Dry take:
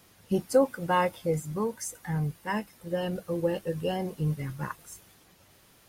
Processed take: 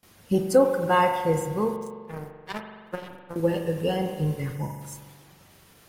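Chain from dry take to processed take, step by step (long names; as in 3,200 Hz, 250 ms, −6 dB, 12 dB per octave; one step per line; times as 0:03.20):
noise gate with hold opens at −49 dBFS
0:01.76–0:03.36: power curve on the samples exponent 3
0:04.56–0:04.81: time-frequency box erased 1,000–4,900 Hz
on a send: convolution reverb RT60 1.6 s, pre-delay 42 ms, DRR 5 dB
on the sum: level +3.5 dB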